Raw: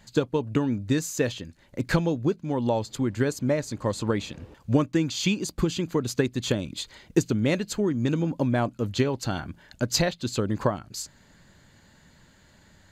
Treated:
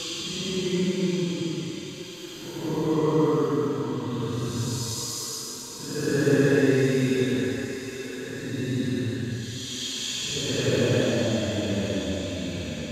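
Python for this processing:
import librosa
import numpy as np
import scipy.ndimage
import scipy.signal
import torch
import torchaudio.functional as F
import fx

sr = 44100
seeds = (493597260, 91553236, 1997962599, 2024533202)

y = fx.echo_thinned(x, sr, ms=65, feedback_pct=66, hz=560.0, wet_db=-7)
y = fx.paulstretch(y, sr, seeds[0], factor=14.0, window_s=0.1, from_s=5.74)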